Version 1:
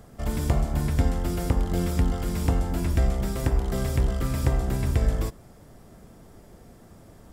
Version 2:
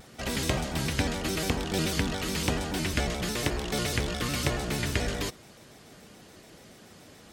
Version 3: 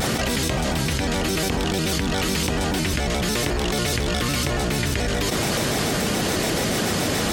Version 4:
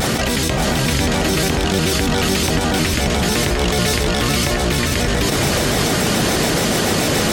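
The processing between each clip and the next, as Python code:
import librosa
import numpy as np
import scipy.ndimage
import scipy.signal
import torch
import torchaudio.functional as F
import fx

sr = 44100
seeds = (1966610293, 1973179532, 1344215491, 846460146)

y1 = fx.weighting(x, sr, curve='D')
y1 = fx.vibrato_shape(y1, sr, shape='square', rate_hz=7.0, depth_cents=160.0)
y2 = fx.env_flatten(y1, sr, amount_pct=100)
y3 = y2 + 10.0 ** (-5.0 / 20.0) * np.pad(y2, (int(579 * sr / 1000.0), 0))[:len(y2)]
y3 = y3 * librosa.db_to_amplitude(4.5)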